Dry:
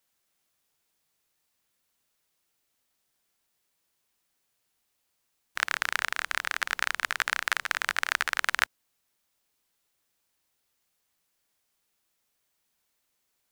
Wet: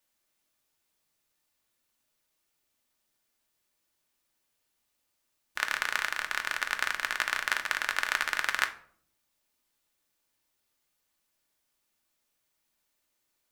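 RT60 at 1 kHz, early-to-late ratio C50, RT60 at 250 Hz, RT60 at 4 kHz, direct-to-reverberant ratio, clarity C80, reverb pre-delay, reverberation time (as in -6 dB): 0.50 s, 14.0 dB, 0.95 s, 0.35 s, 5.0 dB, 18.0 dB, 3 ms, 0.60 s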